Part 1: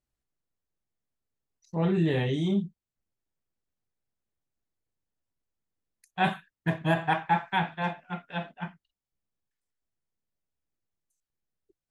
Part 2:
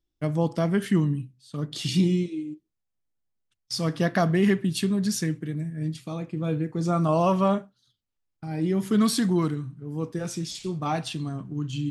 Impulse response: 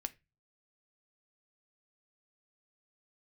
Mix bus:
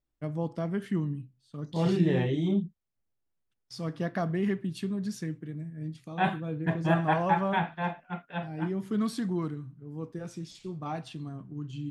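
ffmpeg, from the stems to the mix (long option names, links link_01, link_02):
-filter_complex "[0:a]volume=-0.5dB[link_01];[1:a]volume=-7.5dB[link_02];[link_01][link_02]amix=inputs=2:normalize=0,highshelf=frequency=3200:gain=-9.5"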